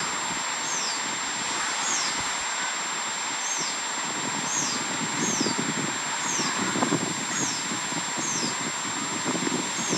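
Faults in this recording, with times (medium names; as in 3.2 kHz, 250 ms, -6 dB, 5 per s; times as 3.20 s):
whine 7.4 kHz -32 dBFS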